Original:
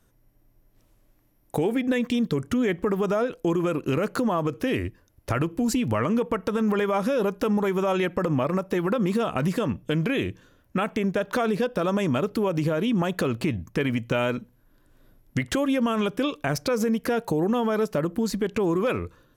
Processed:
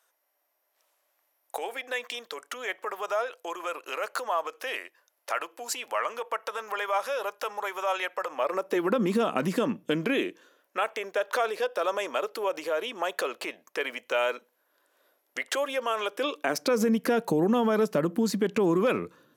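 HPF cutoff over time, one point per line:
HPF 24 dB/oct
8.29 s 620 Hz
8.98 s 200 Hz
9.91 s 200 Hz
10.78 s 480 Hz
16.07 s 480 Hz
16.9 s 160 Hz

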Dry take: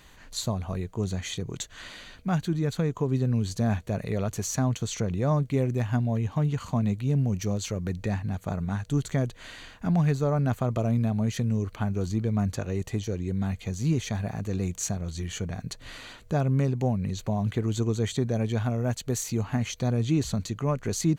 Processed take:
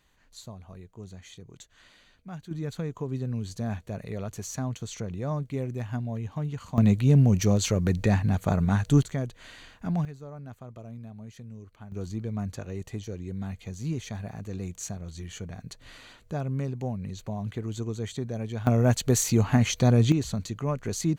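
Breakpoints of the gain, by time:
-14 dB
from 2.51 s -6 dB
from 6.78 s +6 dB
from 9.03 s -4 dB
from 10.05 s -17 dB
from 11.92 s -6 dB
from 18.67 s +6 dB
from 20.12 s -2 dB

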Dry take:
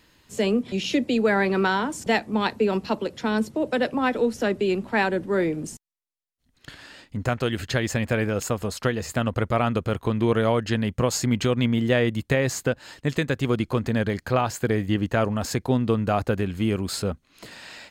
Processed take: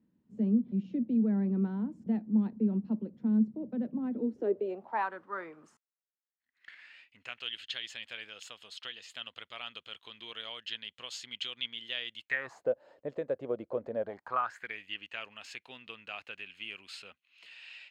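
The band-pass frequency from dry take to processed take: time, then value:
band-pass, Q 4.8
4.1 s 210 Hz
5.1 s 1200 Hz
5.64 s 1200 Hz
7.6 s 3200 Hz
12.2 s 3200 Hz
12.65 s 560 Hz
13.98 s 560 Hz
14.79 s 2700 Hz

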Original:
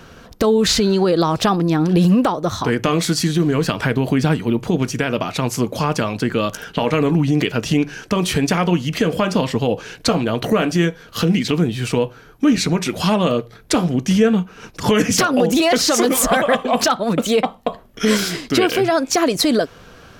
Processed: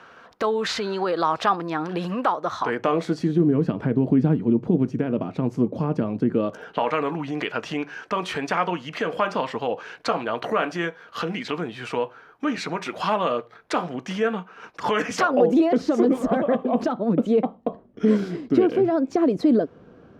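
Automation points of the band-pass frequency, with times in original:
band-pass, Q 1
2.57 s 1200 Hz
3.51 s 250 Hz
6.31 s 250 Hz
6.87 s 1100 Hz
15.14 s 1100 Hz
15.68 s 280 Hz

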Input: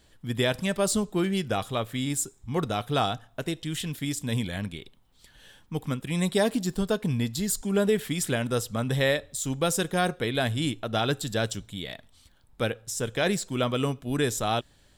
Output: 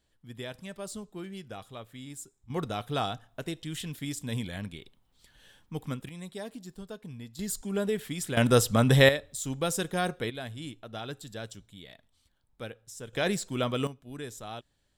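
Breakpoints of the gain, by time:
-14.5 dB
from 2.5 s -5 dB
from 6.09 s -16 dB
from 7.39 s -6 dB
from 8.37 s +6 dB
from 9.09 s -4 dB
from 10.3 s -12.5 dB
from 13.13 s -3 dB
from 13.87 s -14 dB

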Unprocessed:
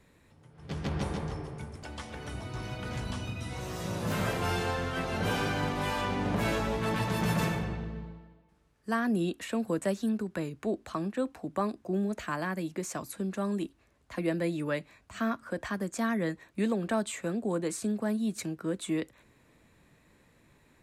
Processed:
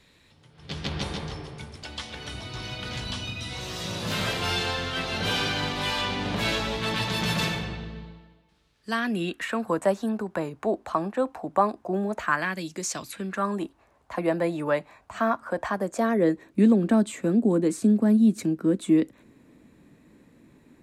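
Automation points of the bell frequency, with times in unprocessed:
bell +13.5 dB 1.5 oct
8.9 s 3800 Hz
9.83 s 840 Hz
12.17 s 840 Hz
12.75 s 7000 Hz
13.59 s 840 Hz
15.68 s 840 Hz
16.6 s 260 Hz

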